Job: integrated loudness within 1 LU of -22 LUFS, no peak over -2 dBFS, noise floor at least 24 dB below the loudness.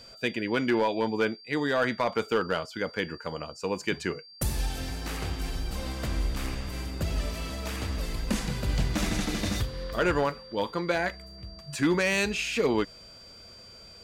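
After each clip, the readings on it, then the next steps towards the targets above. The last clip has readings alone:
clipped samples 0.3%; clipping level -17.5 dBFS; steady tone 4.7 kHz; tone level -48 dBFS; loudness -29.5 LUFS; peak level -17.5 dBFS; loudness target -22.0 LUFS
-> clip repair -17.5 dBFS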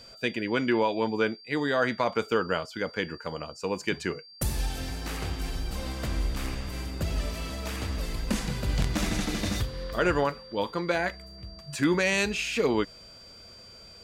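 clipped samples 0.0%; steady tone 4.7 kHz; tone level -48 dBFS
-> band-stop 4.7 kHz, Q 30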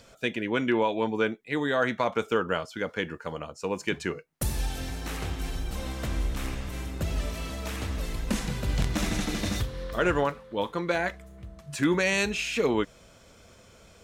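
steady tone not found; loudness -29.5 LUFS; peak level -8.5 dBFS; loudness target -22.0 LUFS
-> trim +7.5 dB; peak limiter -2 dBFS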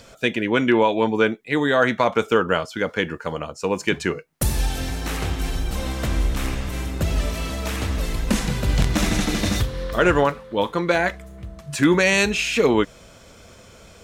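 loudness -22.0 LUFS; peak level -2.0 dBFS; noise floor -47 dBFS

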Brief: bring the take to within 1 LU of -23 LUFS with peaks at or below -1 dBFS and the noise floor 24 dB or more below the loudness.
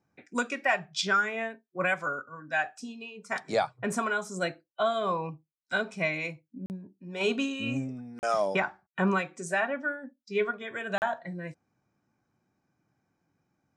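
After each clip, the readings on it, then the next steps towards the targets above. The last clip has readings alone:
dropouts 3; longest dropout 39 ms; loudness -30.5 LUFS; peak level -12.5 dBFS; loudness target -23.0 LUFS
-> interpolate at 6.66/8.19/10.98 s, 39 ms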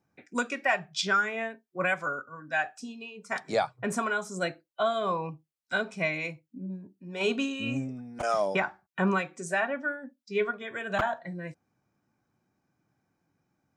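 dropouts 0; loudness -30.5 LUFS; peak level -12.5 dBFS; loudness target -23.0 LUFS
-> trim +7.5 dB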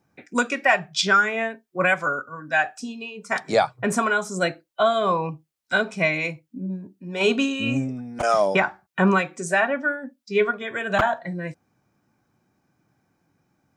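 loudness -23.0 LUFS; peak level -5.0 dBFS; noise floor -74 dBFS

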